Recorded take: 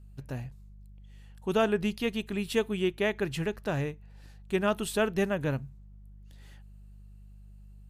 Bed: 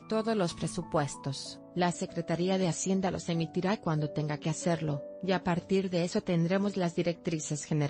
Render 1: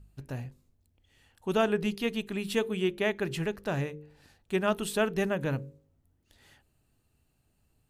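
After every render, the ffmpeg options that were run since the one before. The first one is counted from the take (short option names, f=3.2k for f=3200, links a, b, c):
-af "bandreject=f=50:t=h:w=4,bandreject=f=100:t=h:w=4,bandreject=f=150:t=h:w=4,bandreject=f=200:t=h:w=4,bandreject=f=250:t=h:w=4,bandreject=f=300:t=h:w=4,bandreject=f=350:t=h:w=4,bandreject=f=400:t=h:w=4,bandreject=f=450:t=h:w=4,bandreject=f=500:t=h:w=4,bandreject=f=550:t=h:w=4"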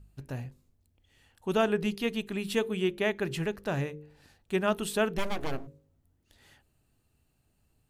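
-filter_complex "[0:a]asplit=3[a][b][c];[a]afade=t=out:st=5.17:d=0.02[d];[b]aeval=exprs='abs(val(0))':c=same,afade=t=in:st=5.17:d=0.02,afade=t=out:st=5.66:d=0.02[e];[c]afade=t=in:st=5.66:d=0.02[f];[d][e][f]amix=inputs=3:normalize=0"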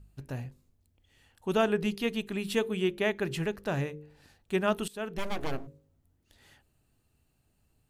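-filter_complex "[0:a]asplit=2[a][b];[a]atrim=end=4.88,asetpts=PTS-STARTPTS,afade=t=out:st=4.876:d=0.004:c=hsin:silence=0.0944061[c];[b]atrim=start=4.88,asetpts=PTS-STARTPTS,afade=t=in:d=0.5:silence=0.0944061[d];[c][d]concat=n=2:v=0:a=1"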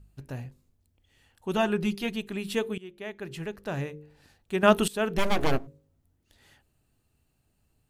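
-filter_complex "[0:a]asettb=1/sr,asplit=3[a][b][c];[a]atrim=end=1.534[d];[b]atrim=start=1.53:end=2.16,asetpts=PTS-STARTPTS,afade=t=in:d=0.004:c=qsin,afade=t=out:st=0.626:d=0.004:c=qsin,aecho=1:1:5.6:0.61,atrim=end_sample=27783[e];[c]atrim=start=2.156[f];[d][e]acrossfade=d=0.004:c1=hsin:c2=qsin[g];[g][f]acrossfade=d=0.004:c1=qsin:c2=hsin,asplit=4[h][i][j][k];[h]atrim=end=2.78,asetpts=PTS-STARTPTS,afade=t=out:st=2.776:d=0.004:c=hsin:silence=0.1[l];[i]atrim=start=2.78:end=4.632,asetpts=PTS-STARTPTS,afade=t=in:d=1.14:silence=0.1[m];[j]atrim=start=4.628:end=5.582,asetpts=PTS-STARTPTS,volume=8.5dB[n];[k]atrim=start=5.578[o];[l][m]concat=n=2:v=0:a=1[p];[p][n]acrossfade=d=0.004:c1=hsin:c2=hsin[q];[q][o]acrossfade=d=0.004:c1=hsin:c2=hsin"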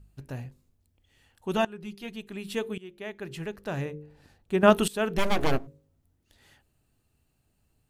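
-filter_complex "[0:a]asettb=1/sr,asplit=3[a][b][c];[a]atrim=end=3.854[d];[b]atrim=start=3.85:end=4.7,asetpts=PTS-STARTPTS,afade=t=in:d=0.004:c=qsin,afade=t=out:st=0.846:d=0.004:c=qsin,tiltshelf=f=1.3k:g=3.5[e];[c]atrim=start=4.696[f];[d][e]acrossfade=d=0.004:c1=hsin:c2=qsin[g];[g][f]acrossfade=d=0.004:c1=qsin:c2=hsin,asplit=2[h][i];[h]atrim=end=1.65,asetpts=PTS-STARTPTS,afade=t=out:st=1.646:d=0.004:c=hsin:silence=0.112202[j];[i]atrim=start=1.65,asetpts=PTS-STARTPTS,afade=t=in:d=1.31:silence=0.112202[k];[j][k]concat=n=2:v=0:a=1"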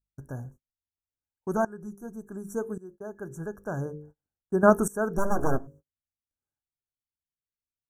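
-af "afftfilt=real='re*(1-between(b*sr/4096,1700,5600))':imag='im*(1-between(b*sr/4096,1700,5600))':win_size=4096:overlap=0.75,agate=range=-35dB:threshold=-48dB:ratio=16:detection=peak"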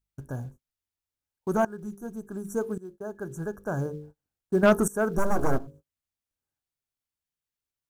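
-filter_complex "[0:a]asplit=2[a][b];[b]acrusher=bits=5:mode=log:mix=0:aa=0.000001,volume=-9dB[c];[a][c]amix=inputs=2:normalize=0,asoftclip=type=tanh:threshold=-11.5dB"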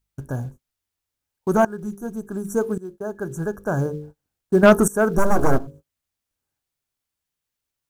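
-af "volume=7dB"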